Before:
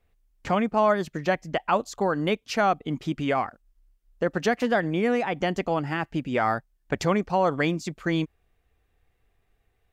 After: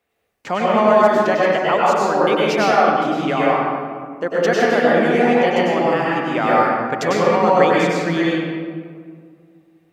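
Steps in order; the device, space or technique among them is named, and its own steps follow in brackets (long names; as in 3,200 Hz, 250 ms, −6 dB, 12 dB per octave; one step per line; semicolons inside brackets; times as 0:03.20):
stairwell (convolution reverb RT60 2.0 s, pre-delay 92 ms, DRR −6 dB)
Bessel high-pass filter 280 Hz, order 2
level +3 dB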